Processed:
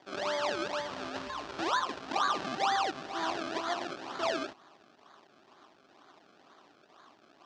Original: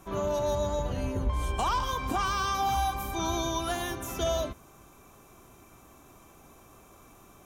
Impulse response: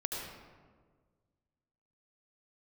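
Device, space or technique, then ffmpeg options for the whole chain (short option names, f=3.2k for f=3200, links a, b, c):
circuit-bent sampling toy: -af "acrusher=samples=32:mix=1:aa=0.000001:lfo=1:lforange=32:lforate=2.1,highpass=400,equalizer=f=490:t=q:w=4:g=-9,equalizer=f=1.2k:t=q:w=4:g=3,equalizer=f=2.1k:t=q:w=4:g=-5,lowpass=f=5.6k:w=0.5412,lowpass=f=5.6k:w=1.3066"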